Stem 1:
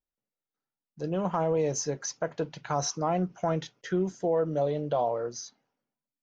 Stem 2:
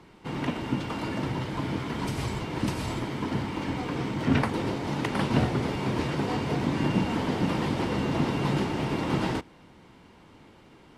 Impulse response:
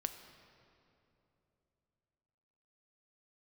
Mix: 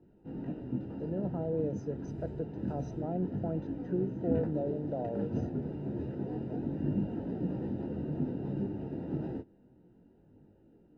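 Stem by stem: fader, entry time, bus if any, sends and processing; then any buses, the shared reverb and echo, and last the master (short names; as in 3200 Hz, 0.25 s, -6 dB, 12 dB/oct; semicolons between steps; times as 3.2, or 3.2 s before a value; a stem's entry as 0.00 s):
-6.0 dB, 0.00 s, no send, dry
-5.0 dB, 0.00 s, no send, detuned doubles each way 10 cents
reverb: off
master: running mean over 40 samples; bell 300 Hz +3 dB 1.9 oct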